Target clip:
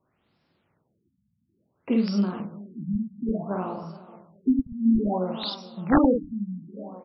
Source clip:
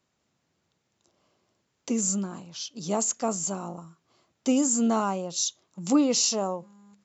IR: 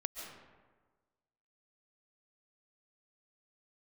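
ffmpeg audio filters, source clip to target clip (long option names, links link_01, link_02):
-filter_complex "[0:a]asplit=2[link_01][link_02];[link_02]adelay=49,volume=-3dB[link_03];[link_01][link_03]amix=inputs=2:normalize=0,aecho=1:1:425|850:0.112|0.0303,asplit=2[link_04][link_05];[1:a]atrim=start_sample=2205,adelay=19[link_06];[link_05][link_06]afir=irnorm=-1:irlink=0,volume=-14.5dB[link_07];[link_04][link_07]amix=inputs=2:normalize=0,aeval=exprs='(mod(4.47*val(0)+1,2)-1)/4.47':channel_layout=same,afftfilt=real='re*lt(b*sr/1024,220*pow(5700/220,0.5+0.5*sin(2*PI*0.58*pts/sr)))':imag='im*lt(b*sr/1024,220*pow(5700/220,0.5+0.5*sin(2*PI*0.58*pts/sr)))':win_size=1024:overlap=0.75,volume=3.5dB"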